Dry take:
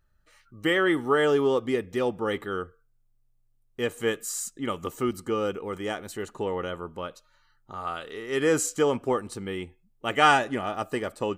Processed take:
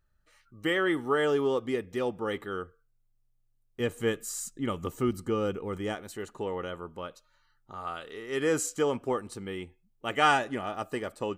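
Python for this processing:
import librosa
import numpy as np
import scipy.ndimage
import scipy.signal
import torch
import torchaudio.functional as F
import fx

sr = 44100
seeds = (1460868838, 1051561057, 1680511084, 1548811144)

y = fx.low_shelf(x, sr, hz=230.0, db=9.5, at=(3.8, 5.95))
y = y * librosa.db_to_amplitude(-4.0)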